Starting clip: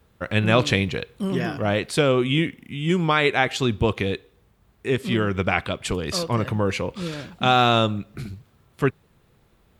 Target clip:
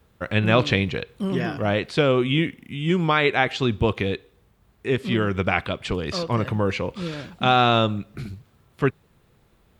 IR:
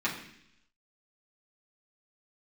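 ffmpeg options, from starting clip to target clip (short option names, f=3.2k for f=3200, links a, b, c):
-filter_complex "[0:a]acrossover=split=5400[a][b];[b]acompressor=threshold=-55dB:ratio=4:attack=1:release=60[c];[a][c]amix=inputs=2:normalize=0"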